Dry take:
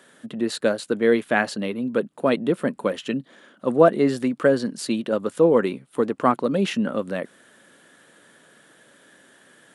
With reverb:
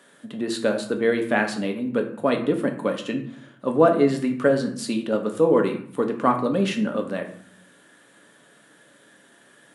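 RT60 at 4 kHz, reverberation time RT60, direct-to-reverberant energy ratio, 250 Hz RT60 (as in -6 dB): 0.40 s, 0.60 s, 4.0 dB, 0.90 s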